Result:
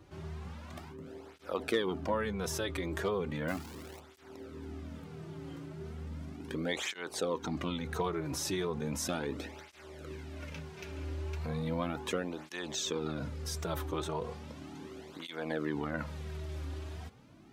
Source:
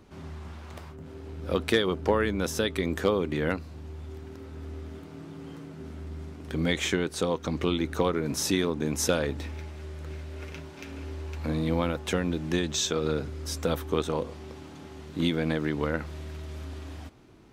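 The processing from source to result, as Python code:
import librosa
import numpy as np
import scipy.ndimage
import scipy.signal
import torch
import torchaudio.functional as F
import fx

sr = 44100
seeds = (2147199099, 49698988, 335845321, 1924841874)

p1 = fx.dynamic_eq(x, sr, hz=890.0, q=1.0, threshold_db=-42.0, ratio=4.0, max_db=5)
p2 = fx.over_compress(p1, sr, threshold_db=-34.0, ratio=-1.0)
p3 = p1 + F.gain(torch.from_numpy(p2), -2.0).numpy()
p4 = fx.quant_dither(p3, sr, seeds[0], bits=6, dither='none', at=(3.48, 4.0))
p5 = fx.flanger_cancel(p4, sr, hz=0.36, depth_ms=4.7)
y = F.gain(torch.from_numpy(p5), -7.5).numpy()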